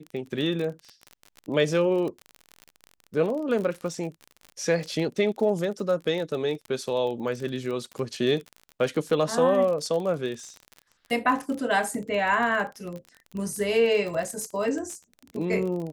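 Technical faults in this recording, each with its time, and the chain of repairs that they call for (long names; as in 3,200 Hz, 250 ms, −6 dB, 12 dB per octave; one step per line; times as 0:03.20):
surface crackle 36 per second −31 dBFS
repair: click removal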